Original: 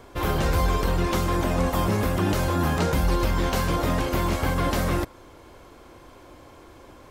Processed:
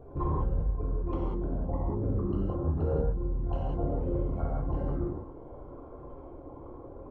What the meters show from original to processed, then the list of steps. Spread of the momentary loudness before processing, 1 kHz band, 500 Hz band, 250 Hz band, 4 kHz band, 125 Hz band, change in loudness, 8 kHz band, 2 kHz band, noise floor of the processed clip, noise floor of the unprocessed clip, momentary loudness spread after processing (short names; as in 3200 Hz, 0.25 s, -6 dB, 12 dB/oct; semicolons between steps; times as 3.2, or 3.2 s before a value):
2 LU, -14.0 dB, -7.5 dB, -8.0 dB, under -30 dB, -6.0 dB, -7.5 dB, under -40 dB, under -25 dB, -47 dBFS, -49 dBFS, 16 LU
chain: formant sharpening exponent 3; bell 170 Hz -3 dB 1.4 oct; compressor, threshold -29 dBFS, peak gain reduction 10 dB; thinning echo 0.104 s, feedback 84%, level -20 dB; non-linear reverb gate 0.22 s flat, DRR -5.5 dB; gain -2 dB